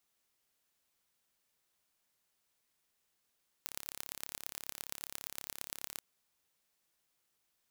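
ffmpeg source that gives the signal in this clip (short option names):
-f lavfi -i "aevalsrc='0.282*eq(mod(n,1267),0)*(0.5+0.5*eq(mod(n,5068),0))':d=2.34:s=44100"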